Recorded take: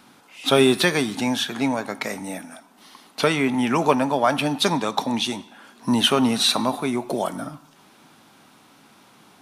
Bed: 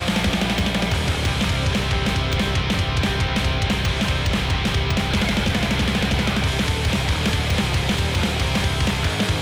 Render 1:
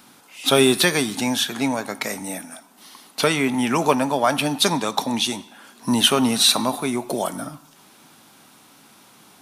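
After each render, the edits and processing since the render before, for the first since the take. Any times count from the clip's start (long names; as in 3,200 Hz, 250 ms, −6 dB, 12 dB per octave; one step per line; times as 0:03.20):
high-shelf EQ 5,700 Hz +10 dB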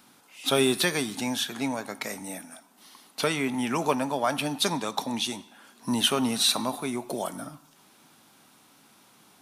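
level −7 dB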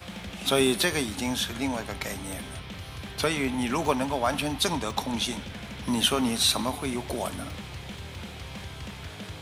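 mix in bed −18.5 dB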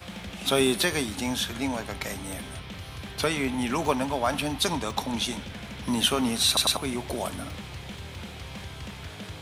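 0:06.47: stutter in place 0.10 s, 3 plays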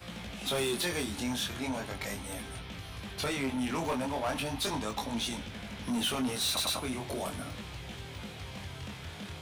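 chorus effect 0.38 Hz, delay 17.5 ms, depth 7.2 ms
soft clipping −26.5 dBFS, distortion −11 dB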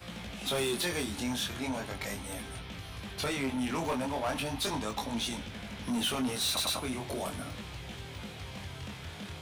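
no processing that can be heard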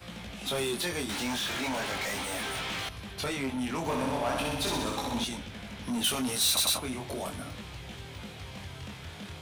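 0:01.09–0:02.89: mid-hump overdrive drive 28 dB, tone 5,000 Hz, clips at −26.5 dBFS
0:03.80–0:05.24: flutter between parallel walls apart 10.7 metres, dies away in 1.1 s
0:06.04–0:06.78: high-shelf EQ 4,200 Hz +9 dB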